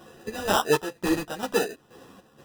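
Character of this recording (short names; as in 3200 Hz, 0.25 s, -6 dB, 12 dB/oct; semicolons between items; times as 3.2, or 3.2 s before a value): chopped level 2.1 Hz, depth 65%, duty 60%; aliases and images of a low sample rate 2200 Hz, jitter 0%; a shimmering, thickened sound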